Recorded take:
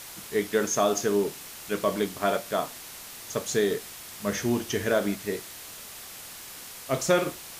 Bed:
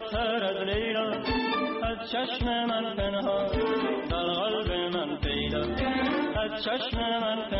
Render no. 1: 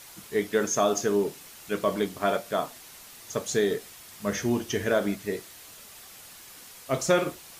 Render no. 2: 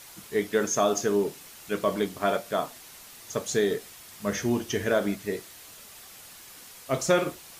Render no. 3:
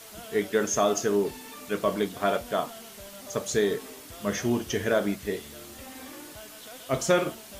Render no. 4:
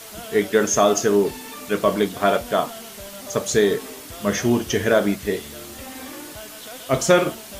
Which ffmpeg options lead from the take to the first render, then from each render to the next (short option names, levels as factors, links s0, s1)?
-af "afftdn=nr=6:nf=-43"
-af anull
-filter_complex "[1:a]volume=0.133[s0];[0:a][s0]amix=inputs=2:normalize=0"
-af "volume=2.24"